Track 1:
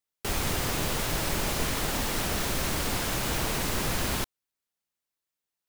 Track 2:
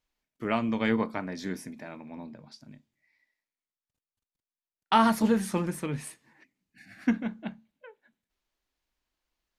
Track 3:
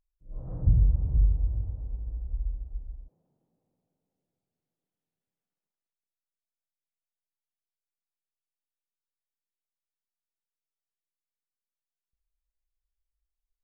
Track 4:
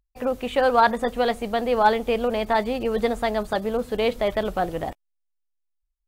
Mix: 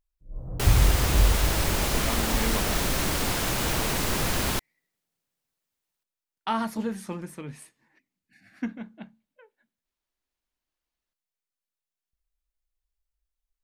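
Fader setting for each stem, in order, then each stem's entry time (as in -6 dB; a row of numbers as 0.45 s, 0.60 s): +2.5 dB, -6.0 dB, +1.5 dB, mute; 0.35 s, 1.55 s, 0.00 s, mute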